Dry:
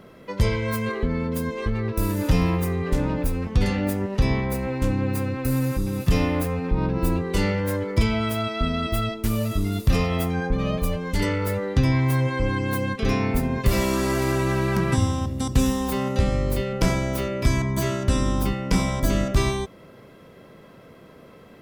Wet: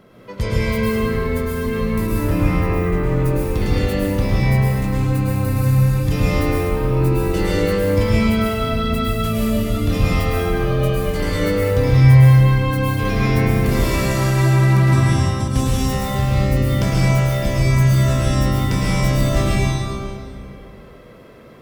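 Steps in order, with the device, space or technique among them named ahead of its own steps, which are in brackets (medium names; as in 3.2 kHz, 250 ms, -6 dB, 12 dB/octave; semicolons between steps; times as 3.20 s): 2.07–3.17 s: high-order bell 6.9 kHz -9.5 dB 2.4 oct; stairwell (reverberation RT60 2.2 s, pre-delay 101 ms, DRR -6 dB); trim -2.5 dB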